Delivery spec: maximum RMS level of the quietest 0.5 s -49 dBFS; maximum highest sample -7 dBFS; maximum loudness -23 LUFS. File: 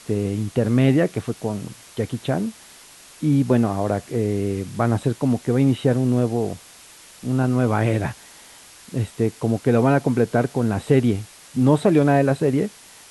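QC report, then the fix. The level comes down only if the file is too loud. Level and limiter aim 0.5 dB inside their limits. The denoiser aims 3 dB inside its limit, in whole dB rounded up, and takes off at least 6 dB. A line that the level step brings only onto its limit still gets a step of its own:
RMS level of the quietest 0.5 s -46 dBFS: fail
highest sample -4.5 dBFS: fail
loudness -21.0 LUFS: fail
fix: noise reduction 6 dB, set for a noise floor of -46 dBFS; trim -2.5 dB; peak limiter -7.5 dBFS

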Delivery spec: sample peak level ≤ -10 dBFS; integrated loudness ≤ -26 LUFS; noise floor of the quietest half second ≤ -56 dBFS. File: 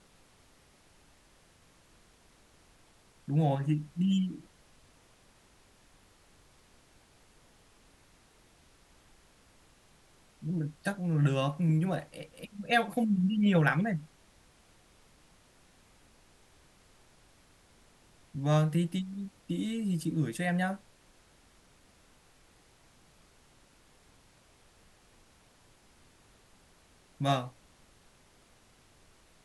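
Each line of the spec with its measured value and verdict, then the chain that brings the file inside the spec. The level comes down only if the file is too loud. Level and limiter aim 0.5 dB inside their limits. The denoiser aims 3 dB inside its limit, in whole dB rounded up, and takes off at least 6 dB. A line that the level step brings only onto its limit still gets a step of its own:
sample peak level -11.0 dBFS: pass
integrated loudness -30.5 LUFS: pass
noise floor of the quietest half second -62 dBFS: pass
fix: none needed

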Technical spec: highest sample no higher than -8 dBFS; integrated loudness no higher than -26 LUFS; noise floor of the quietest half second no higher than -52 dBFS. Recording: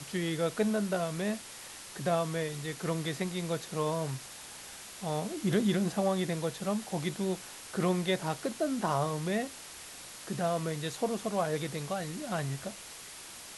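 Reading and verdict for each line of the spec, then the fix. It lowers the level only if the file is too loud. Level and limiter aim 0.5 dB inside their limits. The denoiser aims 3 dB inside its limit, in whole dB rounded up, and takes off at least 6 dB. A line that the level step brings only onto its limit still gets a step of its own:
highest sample -16.0 dBFS: pass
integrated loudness -33.0 LUFS: pass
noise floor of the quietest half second -47 dBFS: fail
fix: noise reduction 8 dB, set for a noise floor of -47 dBFS

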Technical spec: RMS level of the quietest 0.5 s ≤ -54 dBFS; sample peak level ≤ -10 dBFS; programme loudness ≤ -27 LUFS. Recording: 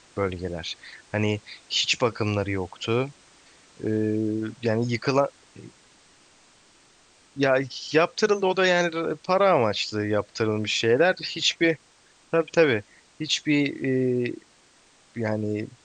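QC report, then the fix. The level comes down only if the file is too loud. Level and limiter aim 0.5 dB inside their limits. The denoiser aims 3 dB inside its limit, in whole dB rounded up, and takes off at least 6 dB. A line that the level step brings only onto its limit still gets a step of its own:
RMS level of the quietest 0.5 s -58 dBFS: pass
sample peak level -6.0 dBFS: fail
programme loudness -24.5 LUFS: fail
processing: trim -3 dB; peak limiter -10.5 dBFS

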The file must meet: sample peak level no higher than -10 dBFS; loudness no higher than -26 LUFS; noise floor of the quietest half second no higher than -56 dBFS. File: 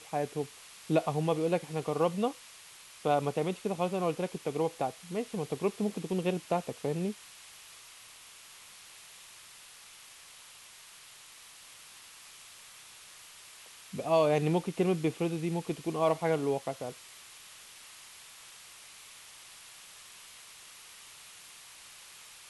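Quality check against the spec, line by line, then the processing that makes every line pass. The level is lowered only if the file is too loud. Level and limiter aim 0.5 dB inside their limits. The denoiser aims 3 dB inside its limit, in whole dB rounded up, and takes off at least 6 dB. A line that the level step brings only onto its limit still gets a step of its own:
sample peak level -13.5 dBFS: pass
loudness -32.0 LUFS: pass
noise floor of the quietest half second -53 dBFS: fail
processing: noise reduction 6 dB, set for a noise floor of -53 dBFS

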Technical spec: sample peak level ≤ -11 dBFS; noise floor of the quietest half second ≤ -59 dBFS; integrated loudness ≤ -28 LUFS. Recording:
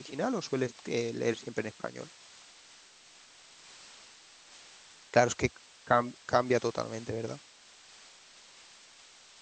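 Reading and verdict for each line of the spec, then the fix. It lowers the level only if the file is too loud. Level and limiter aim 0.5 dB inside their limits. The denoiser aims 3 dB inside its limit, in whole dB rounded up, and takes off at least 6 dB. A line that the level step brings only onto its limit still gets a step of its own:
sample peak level -8.0 dBFS: fail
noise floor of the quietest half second -57 dBFS: fail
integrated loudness -31.5 LUFS: pass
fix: noise reduction 6 dB, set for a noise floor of -57 dBFS; peak limiter -11.5 dBFS

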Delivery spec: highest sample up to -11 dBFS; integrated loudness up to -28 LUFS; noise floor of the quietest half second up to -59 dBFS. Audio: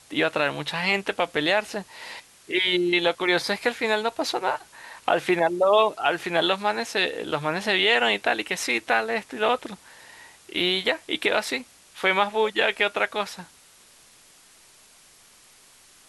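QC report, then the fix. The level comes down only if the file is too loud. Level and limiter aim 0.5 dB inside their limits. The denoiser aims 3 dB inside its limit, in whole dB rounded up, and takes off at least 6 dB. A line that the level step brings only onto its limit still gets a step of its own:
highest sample -5.5 dBFS: fail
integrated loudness -23.5 LUFS: fail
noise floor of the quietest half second -54 dBFS: fail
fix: noise reduction 6 dB, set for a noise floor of -54 dBFS; trim -5 dB; peak limiter -11.5 dBFS

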